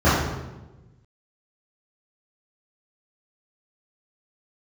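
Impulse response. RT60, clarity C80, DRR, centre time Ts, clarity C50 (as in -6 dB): 1.1 s, 3.0 dB, -14.5 dB, 78 ms, -0.5 dB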